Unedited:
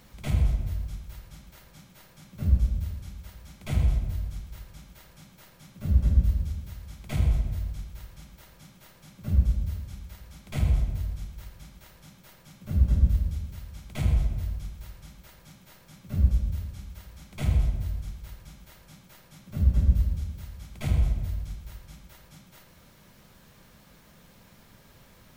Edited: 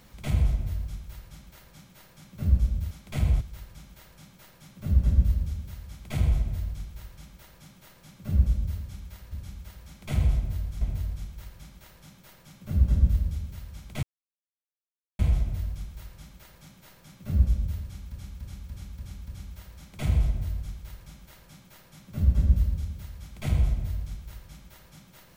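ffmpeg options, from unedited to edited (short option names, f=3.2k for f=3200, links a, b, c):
-filter_complex "[0:a]asplit=11[a][b][c][d][e][f][g][h][i][j][k];[a]atrim=end=2.912[l];[b]atrim=start=10.308:end=10.812[m];[c]atrim=start=4.398:end=10.312[n];[d]atrim=start=2.908:end=4.402[o];[e]atrim=start=10.808:end=14.03,asetpts=PTS-STARTPTS,afade=t=out:st=3.218:d=0.004:c=hsin,apad=pad_dur=1.16[p];[f]atrim=start=14.03:end=16.962,asetpts=PTS-STARTPTS,afade=t=in:d=0.004:c=hsin[q];[g]atrim=start=16.668:end=16.962[r];[h]atrim=start=16.668:end=16.962[s];[i]atrim=start=16.668:end=16.962[t];[j]atrim=start=16.668:end=16.962[u];[k]atrim=start=16.668[v];[l][m]acrossfade=d=0.004:c1=hsin:c2=hsin[w];[w][n]acrossfade=d=0.004:c1=hsin:c2=hsin[x];[x][o]acrossfade=d=0.004:c1=hsin:c2=hsin[y];[p][q]concat=n=2:v=0:a=1[z];[y][z]acrossfade=d=0.004:c1=hsin:c2=hsin[aa];[aa][r]acrossfade=d=0.004:c1=hsin:c2=hsin[ab];[ab][s]acrossfade=d=0.004:c1=hsin:c2=hsin[ac];[ac][t]acrossfade=d=0.004:c1=hsin:c2=hsin[ad];[ad][u]acrossfade=d=0.004:c1=hsin:c2=hsin[ae];[ae][v]acrossfade=d=0.004:c1=hsin:c2=hsin"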